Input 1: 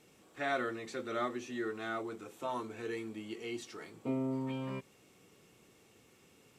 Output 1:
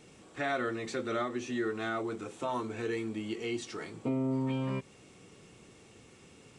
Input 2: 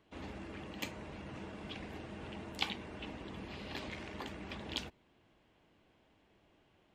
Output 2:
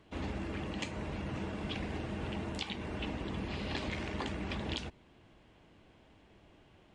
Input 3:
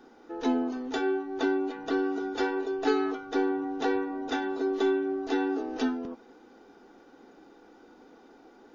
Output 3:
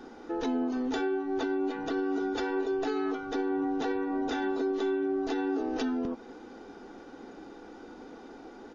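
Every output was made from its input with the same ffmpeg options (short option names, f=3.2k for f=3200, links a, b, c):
-filter_complex "[0:a]lowshelf=f=160:g=6,asplit=2[a][b];[b]acompressor=threshold=-40dB:ratio=6,volume=-1.5dB[c];[a][c]amix=inputs=2:normalize=0,alimiter=limit=-23.5dB:level=0:latency=1:release=132,aresample=22050,aresample=44100,volume=1dB"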